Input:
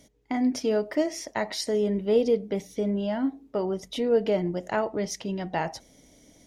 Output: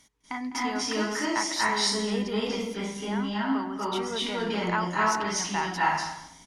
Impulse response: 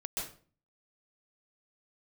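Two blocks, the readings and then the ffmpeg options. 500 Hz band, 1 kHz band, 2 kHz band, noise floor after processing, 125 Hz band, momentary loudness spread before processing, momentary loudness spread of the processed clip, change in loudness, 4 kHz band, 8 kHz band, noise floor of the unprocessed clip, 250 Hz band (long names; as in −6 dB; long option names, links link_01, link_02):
−7.0 dB, +7.5 dB, +8.5 dB, −55 dBFS, −1.0 dB, 8 LU, 6 LU, −0.5 dB, +8.0 dB, +7.0 dB, −58 dBFS, −2.0 dB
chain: -filter_complex "[0:a]lowshelf=frequency=770:width_type=q:width=3:gain=-9.5,asplit=2[link_01][link_02];[link_02]adelay=204.1,volume=-14dB,highshelf=frequency=4000:gain=-4.59[link_03];[link_01][link_03]amix=inputs=2:normalize=0[link_04];[1:a]atrim=start_sample=2205,asetrate=22491,aresample=44100[link_05];[link_04][link_05]afir=irnorm=-1:irlink=0"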